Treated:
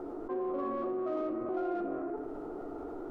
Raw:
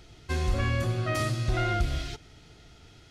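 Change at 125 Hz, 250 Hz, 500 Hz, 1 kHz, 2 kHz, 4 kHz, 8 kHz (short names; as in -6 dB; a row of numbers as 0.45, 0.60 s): -30.0 dB, +1.5 dB, +1.5 dB, -4.0 dB, -19.0 dB, under -25 dB, under -30 dB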